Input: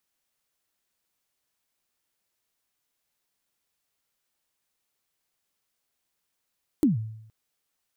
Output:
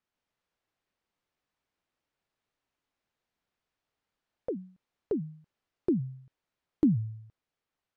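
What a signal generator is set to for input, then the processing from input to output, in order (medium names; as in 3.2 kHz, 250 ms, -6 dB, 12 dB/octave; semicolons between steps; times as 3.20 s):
kick drum length 0.47 s, from 330 Hz, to 110 Hz, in 143 ms, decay 0.77 s, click on, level -14.5 dB
ever faster or slower copies 141 ms, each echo +3 st, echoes 3; tape spacing loss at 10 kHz 23 dB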